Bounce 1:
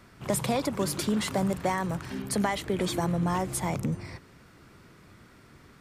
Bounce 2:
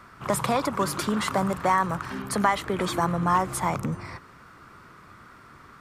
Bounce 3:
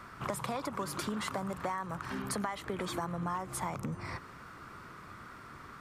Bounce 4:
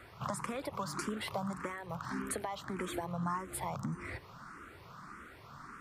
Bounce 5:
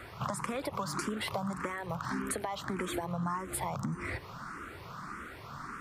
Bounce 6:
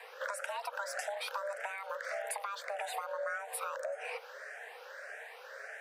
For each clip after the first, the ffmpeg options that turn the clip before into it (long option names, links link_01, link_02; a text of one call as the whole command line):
ffmpeg -i in.wav -af "equalizer=frequency=1200:width_type=o:width=1:gain=13" out.wav
ffmpeg -i in.wav -af "acompressor=threshold=-34dB:ratio=5" out.wav
ffmpeg -i in.wav -filter_complex "[0:a]asplit=2[link_01][link_02];[link_02]afreqshift=1.7[link_03];[link_01][link_03]amix=inputs=2:normalize=1,volume=1dB" out.wav
ffmpeg -i in.wav -af "acompressor=threshold=-40dB:ratio=2.5,volume=7dB" out.wav
ffmpeg -i in.wav -af "afreqshift=400,volume=-3.5dB" out.wav